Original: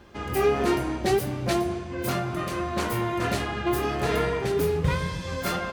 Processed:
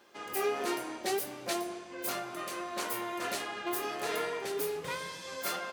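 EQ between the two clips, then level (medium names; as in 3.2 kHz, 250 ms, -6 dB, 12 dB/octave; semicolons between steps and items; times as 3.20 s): high-pass 380 Hz 12 dB/octave; treble shelf 4.7 kHz +8.5 dB; -7.5 dB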